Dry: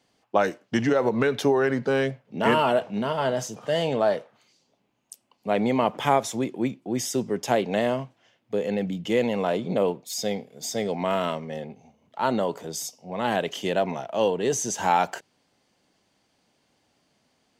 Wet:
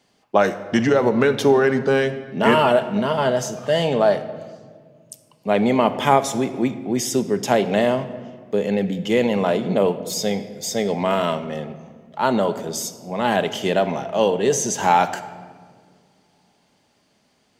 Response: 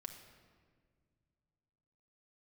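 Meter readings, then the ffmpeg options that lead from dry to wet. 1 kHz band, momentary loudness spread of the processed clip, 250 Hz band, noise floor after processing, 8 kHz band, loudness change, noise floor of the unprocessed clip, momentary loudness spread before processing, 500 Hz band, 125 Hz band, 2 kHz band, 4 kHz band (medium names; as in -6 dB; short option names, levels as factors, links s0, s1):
+5.0 dB, 10 LU, +5.5 dB, -63 dBFS, +5.0 dB, +5.5 dB, -70 dBFS, 9 LU, +5.5 dB, +5.5 dB, +5.0 dB, +5.0 dB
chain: -filter_complex "[0:a]asplit=2[s0][s1];[1:a]atrim=start_sample=2205[s2];[s1][s2]afir=irnorm=-1:irlink=0,volume=1.78[s3];[s0][s3]amix=inputs=2:normalize=0,volume=0.891"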